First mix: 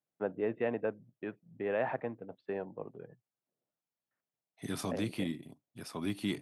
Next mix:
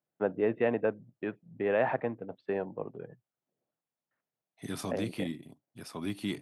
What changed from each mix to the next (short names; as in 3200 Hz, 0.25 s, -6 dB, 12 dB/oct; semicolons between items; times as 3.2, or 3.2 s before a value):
first voice +5.0 dB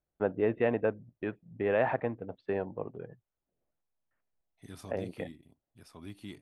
second voice -11.0 dB; master: remove HPF 120 Hz 24 dB/oct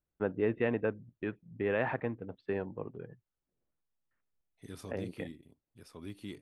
second voice: add bell 490 Hz +8.5 dB 0.84 oct; master: add bell 670 Hz -7.5 dB 0.86 oct